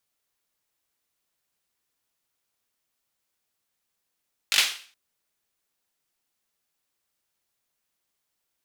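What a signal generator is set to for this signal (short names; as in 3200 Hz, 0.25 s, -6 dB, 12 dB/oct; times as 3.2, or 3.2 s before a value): hand clap length 0.42 s, apart 20 ms, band 3000 Hz, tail 0.43 s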